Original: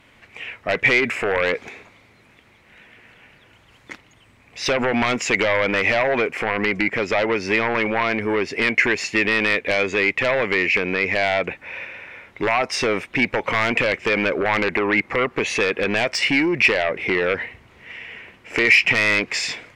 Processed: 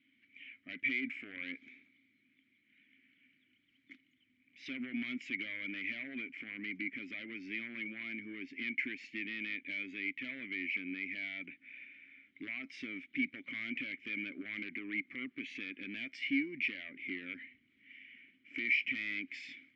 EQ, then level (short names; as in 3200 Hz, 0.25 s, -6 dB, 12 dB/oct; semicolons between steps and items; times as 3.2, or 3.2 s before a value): vowel filter i; bell 460 Hz -13.5 dB 0.47 oct; high shelf 7700 Hz -4.5 dB; -8.0 dB